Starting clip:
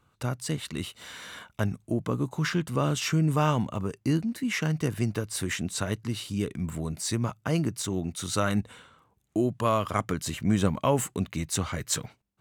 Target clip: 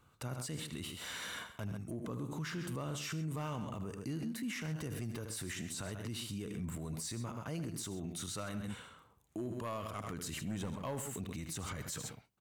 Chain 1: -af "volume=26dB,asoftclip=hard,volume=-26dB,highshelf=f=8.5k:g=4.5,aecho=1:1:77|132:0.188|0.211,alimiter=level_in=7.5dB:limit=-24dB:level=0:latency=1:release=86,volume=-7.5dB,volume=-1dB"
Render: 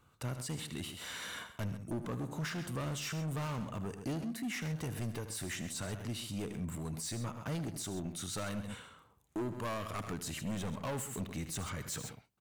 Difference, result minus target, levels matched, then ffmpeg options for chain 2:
overloaded stage: distortion +12 dB
-af "volume=17.5dB,asoftclip=hard,volume=-17.5dB,highshelf=f=8.5k:g=4.5,aecho=1:1:77|132:0.188|0.211,alimiter=level_in=7.5dB:limit=-24dB:level=0:latency=1:release=86,volume=-7.5dB,volume=-1dB"

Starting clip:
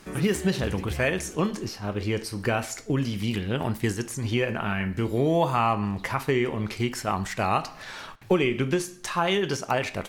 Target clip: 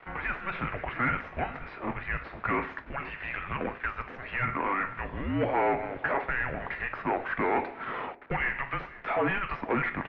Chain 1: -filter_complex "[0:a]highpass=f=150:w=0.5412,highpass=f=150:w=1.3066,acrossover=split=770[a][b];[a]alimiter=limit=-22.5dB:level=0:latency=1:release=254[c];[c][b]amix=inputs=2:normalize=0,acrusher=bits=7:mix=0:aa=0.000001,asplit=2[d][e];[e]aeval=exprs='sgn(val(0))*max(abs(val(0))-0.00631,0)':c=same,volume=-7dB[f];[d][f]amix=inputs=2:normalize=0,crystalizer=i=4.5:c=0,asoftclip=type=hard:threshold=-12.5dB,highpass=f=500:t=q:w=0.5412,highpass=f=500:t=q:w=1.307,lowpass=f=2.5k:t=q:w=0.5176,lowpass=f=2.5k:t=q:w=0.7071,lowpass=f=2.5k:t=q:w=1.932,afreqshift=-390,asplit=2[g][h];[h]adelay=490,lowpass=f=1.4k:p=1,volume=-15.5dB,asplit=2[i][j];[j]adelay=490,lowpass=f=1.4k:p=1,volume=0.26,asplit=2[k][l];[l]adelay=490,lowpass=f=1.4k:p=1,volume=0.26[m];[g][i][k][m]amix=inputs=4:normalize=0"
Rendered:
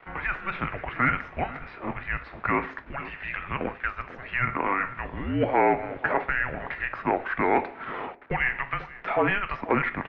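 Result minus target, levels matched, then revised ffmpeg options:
hard clip: distortion -10 dB
-filter_complex "[0:a]highpass=f=150:w=0.5412,highpass=f=150:w=1.3066,acrossover=split=770[a][b];[a]alimiter=limit=-22.5dB:level=0:latency=1:release=254[c];[c][b]amix=inputs=2:normalize=0,acrusher=bits=7:mix=0:aa=0.000001,asplit=2[d][e];[e]aeval=exprs='sgn(val(0))*max(abs(val(0))-0.00631,0)':c=same,volume=-7dB[f];[d][f]amix=inputs=2:normalize=0,crystalizer=i=4.5:c=0,asoftclip=type=hard:threshold=-21dB,highpass=f=500:t=q:w=0.5412,highpass=f=500:t=q:w=1.307,lowpass=f=2.5k:t=q:w=0.5176,lowpass=f=2.5k:t=q:w=0.7071,lowpass=f=2.5k:t=q:w=1.932,afreqshift=-390,asplit=2[g][h];[h]adelay=490,lowpass=f=1.4k:p=1,volume=-15.5dB,asplit=2[i][j];[j]adelay=490,lowpass=f=1.4k:p=1,volume=0.26,asplit=2[k][l];[l]adelay=490,lowpass=f=1.4k:p=1,volume=0.26[m];[g][i][k][m]amix=inputs=4:normalize=0"

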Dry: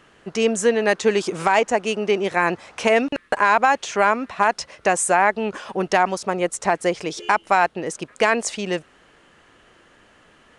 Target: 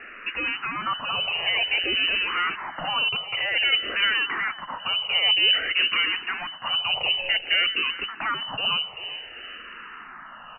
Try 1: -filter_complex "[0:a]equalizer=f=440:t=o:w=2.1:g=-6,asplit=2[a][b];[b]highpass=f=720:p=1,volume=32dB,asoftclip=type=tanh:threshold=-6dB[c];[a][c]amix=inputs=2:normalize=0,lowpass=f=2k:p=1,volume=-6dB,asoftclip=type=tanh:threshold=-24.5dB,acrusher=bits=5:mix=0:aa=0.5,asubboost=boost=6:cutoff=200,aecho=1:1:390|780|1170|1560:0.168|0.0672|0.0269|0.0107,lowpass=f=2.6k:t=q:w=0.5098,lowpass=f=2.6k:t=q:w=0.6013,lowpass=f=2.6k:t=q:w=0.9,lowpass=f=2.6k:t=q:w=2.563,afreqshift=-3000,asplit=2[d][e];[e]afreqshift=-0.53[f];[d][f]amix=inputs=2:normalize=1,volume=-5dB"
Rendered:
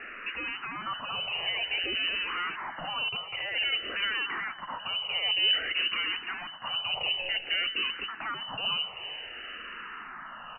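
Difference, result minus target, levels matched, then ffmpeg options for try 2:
soft clip: distortion +10 dB
-filter_complex "[0:a]equalizer=f=440:t=o:w=2.1:g=-6,asplit=2[a][b];[b]highpass=f=720:p=1,volume=32dB,asoftclip=type=tanh:threshold=-6dB[c];[a][c]amix=inputs=2:normalize=0,lowpass=f=2k:p=1,volume=-6dB,asoftclip=type=tanh:threshold=-13.5dB,acrusher=bits=5:mix=0:aa=0.5,asubboost=boost=6:cutoff=200,aecho=1:1:390|780|1170|1560:0.168|0.0672|0.0269|0.0107,lowpass=f=2.6k:t=q:w=0.5098,lowpass=f=2.6k:t=q:w=0.6013,lowpass=f=2.6k:t=q:w=0.9,lowpass=f=2.6k:t=q:w=2.563,afreqshift=-3000,asplit=2[d][e];[e]afreqshift=-0.53[f];[d][f]amix=inputs=2:normalize=1,volume=-5dB"

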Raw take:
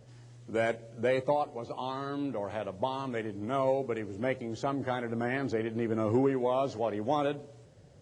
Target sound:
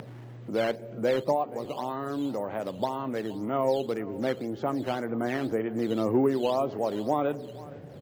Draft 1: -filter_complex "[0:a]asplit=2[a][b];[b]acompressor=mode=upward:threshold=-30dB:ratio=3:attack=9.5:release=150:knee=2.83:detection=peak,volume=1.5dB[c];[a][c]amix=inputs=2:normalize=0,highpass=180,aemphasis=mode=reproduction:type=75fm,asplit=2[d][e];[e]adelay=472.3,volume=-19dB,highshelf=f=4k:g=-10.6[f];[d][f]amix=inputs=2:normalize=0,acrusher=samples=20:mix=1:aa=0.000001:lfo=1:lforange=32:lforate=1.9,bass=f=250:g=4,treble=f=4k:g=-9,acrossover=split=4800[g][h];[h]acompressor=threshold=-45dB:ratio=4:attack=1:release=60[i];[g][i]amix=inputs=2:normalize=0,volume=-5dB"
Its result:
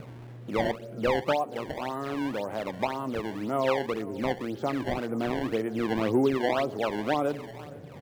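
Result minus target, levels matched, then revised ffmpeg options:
decimation with a swept rate: distortion +10 dB
-filter_complex "[0:a]asplit=2[a][b];[b]acompressor=mode=upward:threshold=-30dB:ratio=3:attack=9.5:release=150:knee=2.83:detection=peak,volume=1.5dB[c];[a][c]amix=inputs=2:normalize=0,highpass=180,aemphasis=mode=reproduction:type=75fm,asplit=2[d][e];[e]adelay=472.3,volume=-19dB,highshelf=f=4k:g=-10.6[f];[d][f]amix=inputs=2:normalize=0,acrusher=samples=7:mix=1:aa=0.000001:lfo=1:lforange=11.2:lforate=1.9,bass=f=250:g=4,treble=f=4k:g=-9,acrossover=split=4800[g][h];[h]acompressor=threshold=-45dB:ratio=4:attack=1:release=60[i];[g][i]amix=inputs=2:normalize=0,volume=-5dB"

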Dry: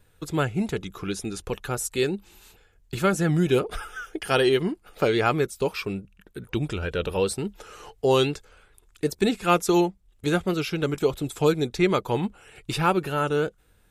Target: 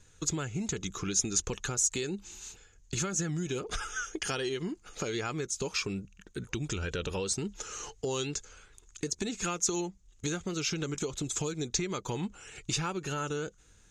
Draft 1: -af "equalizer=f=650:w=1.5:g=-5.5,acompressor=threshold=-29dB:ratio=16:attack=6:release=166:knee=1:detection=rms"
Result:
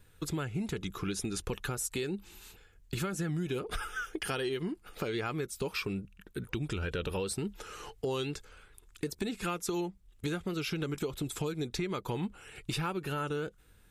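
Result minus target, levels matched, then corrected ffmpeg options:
8000 Hz band -8.5 dB
-af "equalizer=f=650:w=1.5:g=-5.5,acompressor=threshold=-29dB:ratio=16:attack=6:release=166:knee=1:detection=rms,lowpass=f=6.6k:t=q:w=8.9"

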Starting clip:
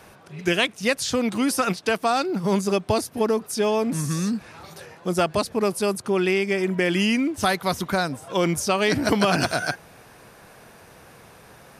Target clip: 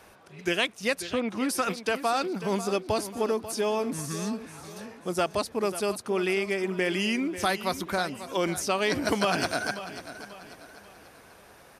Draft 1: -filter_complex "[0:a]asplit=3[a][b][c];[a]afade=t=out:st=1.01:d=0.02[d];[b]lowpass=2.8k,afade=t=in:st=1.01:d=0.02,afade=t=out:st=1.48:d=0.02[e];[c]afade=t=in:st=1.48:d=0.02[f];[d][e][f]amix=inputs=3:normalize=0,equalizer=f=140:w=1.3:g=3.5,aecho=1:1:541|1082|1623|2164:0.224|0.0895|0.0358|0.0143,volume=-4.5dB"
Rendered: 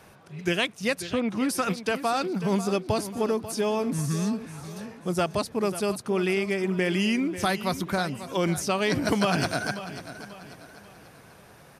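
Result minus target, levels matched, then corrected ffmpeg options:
125 Hz band +6.0 dB
-filter_complex "[0:a]asplit=3[a][b][c];[a]afade=t=out:st=1.01:d=0.02[d];[b]lowpass=2.8k,afade=t=in:st=1.01:d=0.02,afade=t=out:st=1.48:d=0.02[e];[c]afade=t=in:st=1.48:d=0.02[f];[d][e][f]amix=inputs=3:normalize=0,equalizer=f=140:w=1.3:g=-7,aecho=1:1:541|1082|1623|2164:0.224|0.0895|0.0358|0.0143,volume=-4.5dB"

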